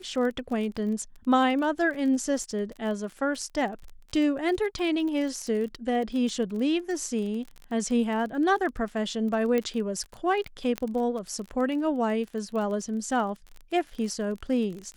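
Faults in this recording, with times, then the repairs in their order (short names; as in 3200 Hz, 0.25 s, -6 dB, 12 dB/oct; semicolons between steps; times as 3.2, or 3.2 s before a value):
crackle 31/s -34 dBFS
9.58 pop -15 dBFS
10.78 pop -15 dBFS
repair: de-click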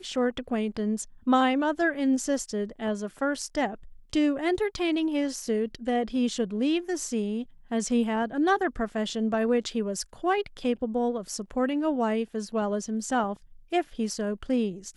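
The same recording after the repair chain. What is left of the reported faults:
9.58 pop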